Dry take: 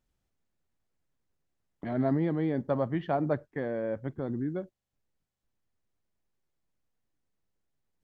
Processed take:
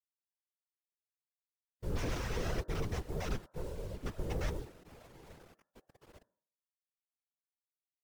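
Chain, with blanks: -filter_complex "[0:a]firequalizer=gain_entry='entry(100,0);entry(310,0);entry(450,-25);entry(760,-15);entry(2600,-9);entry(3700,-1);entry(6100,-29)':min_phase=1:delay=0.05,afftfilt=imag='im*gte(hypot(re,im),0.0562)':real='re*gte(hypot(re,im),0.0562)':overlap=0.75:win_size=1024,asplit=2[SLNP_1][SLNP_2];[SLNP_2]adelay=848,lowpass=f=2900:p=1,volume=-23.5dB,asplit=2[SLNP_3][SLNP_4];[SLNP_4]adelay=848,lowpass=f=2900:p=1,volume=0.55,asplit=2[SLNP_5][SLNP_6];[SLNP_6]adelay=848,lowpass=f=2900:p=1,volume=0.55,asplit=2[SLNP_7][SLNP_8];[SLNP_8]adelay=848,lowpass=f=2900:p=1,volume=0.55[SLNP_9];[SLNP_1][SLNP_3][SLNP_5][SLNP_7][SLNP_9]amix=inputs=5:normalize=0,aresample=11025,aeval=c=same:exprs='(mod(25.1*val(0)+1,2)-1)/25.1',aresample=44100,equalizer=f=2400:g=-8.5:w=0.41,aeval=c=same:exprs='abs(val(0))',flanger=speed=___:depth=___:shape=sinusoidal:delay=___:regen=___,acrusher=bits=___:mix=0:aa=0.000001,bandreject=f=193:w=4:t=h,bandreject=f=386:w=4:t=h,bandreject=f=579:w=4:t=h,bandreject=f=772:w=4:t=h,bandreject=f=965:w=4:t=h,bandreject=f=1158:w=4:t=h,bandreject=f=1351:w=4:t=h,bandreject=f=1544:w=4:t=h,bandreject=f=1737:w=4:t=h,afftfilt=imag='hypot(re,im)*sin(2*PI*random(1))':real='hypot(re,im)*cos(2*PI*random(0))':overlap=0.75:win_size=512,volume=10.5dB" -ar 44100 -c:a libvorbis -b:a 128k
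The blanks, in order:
1.5, 3.5, 7.3, -21, 9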